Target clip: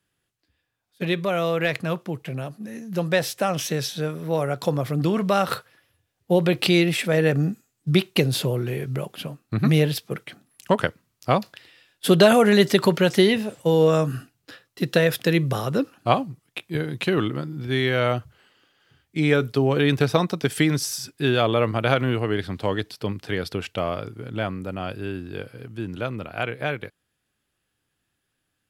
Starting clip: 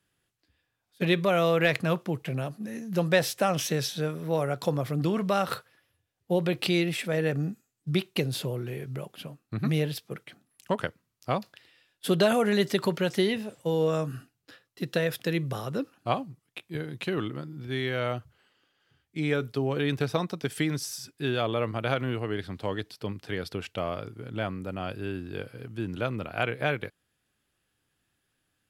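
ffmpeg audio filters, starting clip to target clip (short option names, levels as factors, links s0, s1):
-af "dynaudnorm=f=600:g=17:m=3.16"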